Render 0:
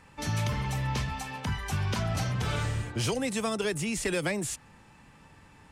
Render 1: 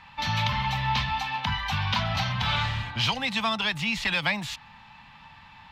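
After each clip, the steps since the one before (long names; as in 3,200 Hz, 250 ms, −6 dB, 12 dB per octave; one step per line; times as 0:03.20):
drawn EQ curve 220 Hz 0 dB, 390 Hz −17 dB, 890 Hz +11 dB, 1,400 Hz +5 dB, 3,800 Hz +13 dB, 9,300 Hz −18 dB, 13,000 Hz −4 dB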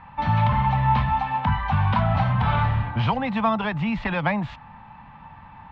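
low-pass filter 1,100 Hz 12 dB per octave
level +8.5 dB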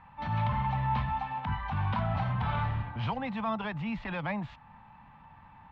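transient designer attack −7 dB, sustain −2 dB
level −8.5 dB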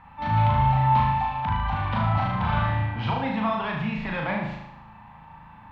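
flutter between parallel walls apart 6.4 metres, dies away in 0.82 s
level +4 dB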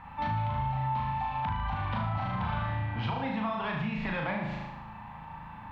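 downward compressor 5 to 1, threshold −32 dBFS, peak gain reduction 14 dB
level +2.5 dB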